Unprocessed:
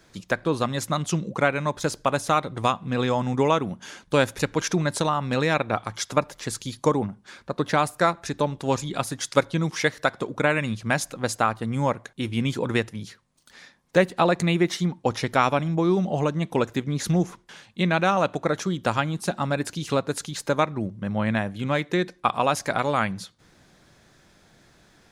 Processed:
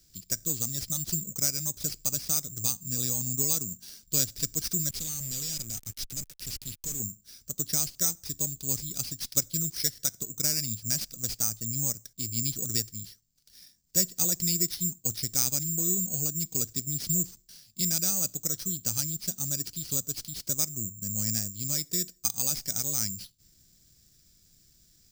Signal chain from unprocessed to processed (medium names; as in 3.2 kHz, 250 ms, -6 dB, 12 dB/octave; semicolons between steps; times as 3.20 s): careless resampling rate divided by 6×, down none, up zero stuff; peaking EQ 4.9 kHz +14 dB 0.61 oct; 4.89–7.00 s: fuzz box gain 26 dB, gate -24 dBFS; amplifier tone stack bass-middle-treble 10-0-1; trim +4.5 dB